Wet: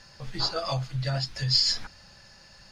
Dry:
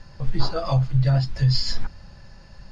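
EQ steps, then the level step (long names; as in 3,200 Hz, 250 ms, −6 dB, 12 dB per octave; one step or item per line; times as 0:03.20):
spectral tilt +3 dB per octave
parametric band 1,000 Hz −2.5 dB 0.25 octaves
−2.0 dB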